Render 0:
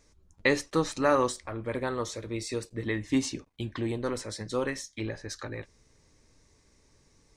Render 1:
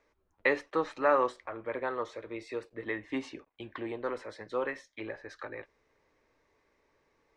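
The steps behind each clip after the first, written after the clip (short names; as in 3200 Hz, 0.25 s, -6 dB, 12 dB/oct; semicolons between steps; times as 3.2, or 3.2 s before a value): three-band isolator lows -17 dB, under 360 Hz, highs -24 dB, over 2900 Hz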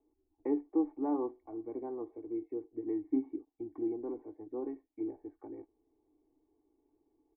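vocal tract filter u; comb 2.7 ms, depth 78%; gain +5.5 dB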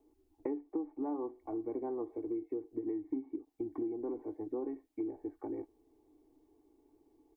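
compressor 8:1, threshold -41 dBFS, peak gain reduction 16 dB; gain +7 dB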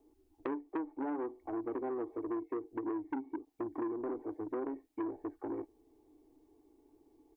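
core saturation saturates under 930 Hz; gain +2 dB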